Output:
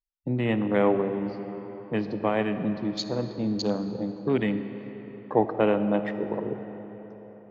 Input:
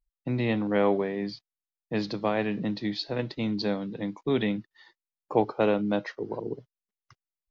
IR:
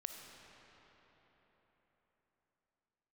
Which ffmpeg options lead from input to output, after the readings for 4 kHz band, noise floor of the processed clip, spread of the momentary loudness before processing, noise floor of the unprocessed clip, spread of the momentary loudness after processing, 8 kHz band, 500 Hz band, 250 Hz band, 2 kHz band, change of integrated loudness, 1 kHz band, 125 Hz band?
−1.5 dB, −47 dBFS, 11 LU, below −85 dBFS, 16 LU, can't be measured, +2.0 dB, +2.0 dB, 0.0 dB, +1.5 dB, +2.0 dB, +2.0 dB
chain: -filter_complex "[0:a]afwtdn=0.0141,asplit=2[link_01][link_02];[1:a]atrim=start_sample=2205[link_03];[link_02][link_03]afir=irnorm=-1:irlink=0,volume=4dB[link_04];[link_01][link_04]amix=inputs=2:normalize=0,volume=-4.5dB"

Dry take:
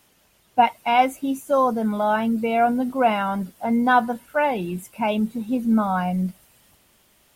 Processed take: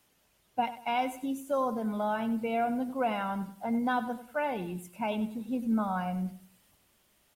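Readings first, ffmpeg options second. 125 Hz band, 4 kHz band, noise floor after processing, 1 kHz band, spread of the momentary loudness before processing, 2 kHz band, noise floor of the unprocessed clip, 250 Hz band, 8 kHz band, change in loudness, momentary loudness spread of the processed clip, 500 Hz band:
−9.0 dB, −10.0 dB, −69 dBFS, −11.5 dB, 8 LU, −11.5 dB, −61 dBFS, −9.0 dB, −9.0 dB, −10.0 dB, 6 LU, −10.0 dB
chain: -filter_complex "[0:a]acrossover=split=480|3000[link_01][link_02][link_03];[link_02]acompressor=threshold=-19dB:ratio=6[link_04];[link_01][link_04][link_03]amix=inputs=3:normalize=0,aecho=1:1:96|192|288:0.211|0.0697|0.023,volume=-9dB"

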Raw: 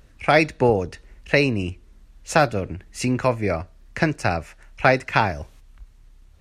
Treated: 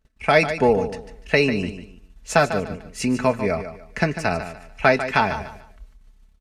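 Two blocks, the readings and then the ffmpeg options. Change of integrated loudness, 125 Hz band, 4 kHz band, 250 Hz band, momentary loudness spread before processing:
0.0 dB, −3.0 dB, +0.5 dB, +0.5 dB, 12 LU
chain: -af "agate=range=-22dB:threshold=-48dB:ratio=16:detection=peak,aecho=1:1:4.6:0.53,aecho=1:1:147|294|441:0.282|0.0789|0.0221,volume=-1dB"

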